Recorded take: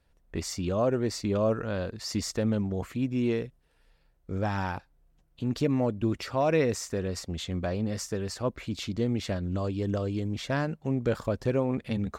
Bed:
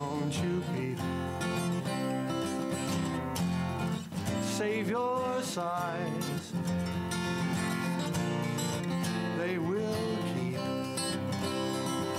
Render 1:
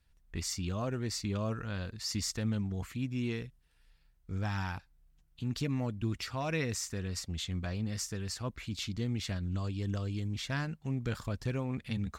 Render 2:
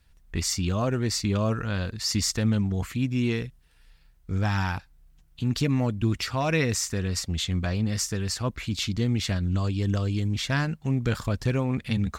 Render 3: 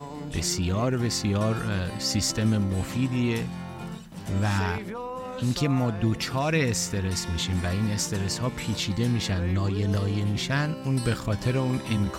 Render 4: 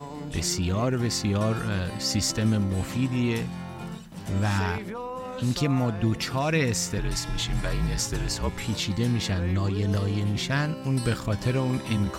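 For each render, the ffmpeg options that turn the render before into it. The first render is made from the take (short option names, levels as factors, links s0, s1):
-af "equalizer=f=490:w=0.54:g=-12.5,bandreject=f=570:w=14"
-af "volume=2.82"
-filter_complex "[1:a]volume=0.631[s0];[0:a][s0]amix=inputs=2:normalize=0"
-filter_complex "[0:a]asettb=1/sr,asplit=3[s0][s1][s2];[s0]atrim=end=6.984[s3];[s1]atrim=start=6.98:end=8.68,asetpts=PTS-STARTPTS,afade=t=in:d=0.004:c=qsin,afade=t=out:st=1.696:d=0.004:c=qsin,afreqshift=-55[s4];[s2]atrim=start=8.676[s5];[s3][s4]acrossfade=d=0.004:c1=hsin:c2=qsin[s6];[s6][s5]acrossfade=d=0.004:c1=qsin:c2=hsin"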